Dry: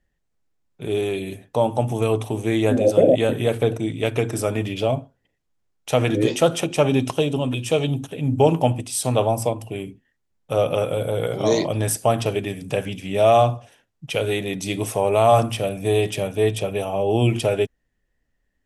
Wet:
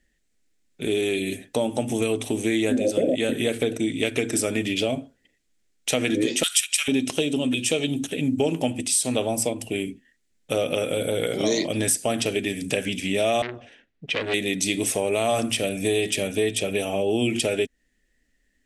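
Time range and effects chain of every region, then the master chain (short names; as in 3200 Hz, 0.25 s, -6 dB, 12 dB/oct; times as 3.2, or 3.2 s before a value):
6.43–6.88 HPF 1400 Hz 24 dB/oct + tilt +4 dB/oct + notch 6300 Hz, Q 10
13.42–14.34 LPF 2700 Hz + core saturation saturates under 2000 Hz
whole clip: graphic EQ 125/250/1000/2000/4000/8000 Hz -10/+7/-10/+7/+4/+9 dB; compressor 3:1, threshold -24 dBFS; gain +2.5 dB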